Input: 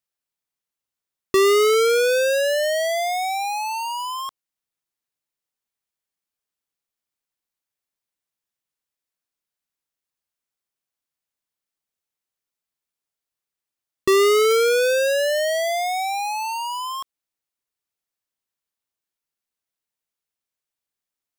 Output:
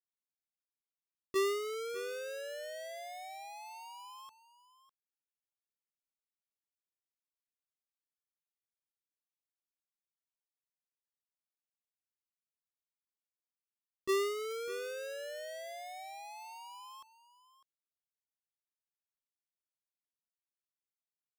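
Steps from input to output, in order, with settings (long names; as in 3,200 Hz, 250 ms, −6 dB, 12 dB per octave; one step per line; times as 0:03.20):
noise gate −14 dBFS, range −30 dB
on a send: single-tap delay 602 ms −15.5 dB
on the sum: level +7.5 dB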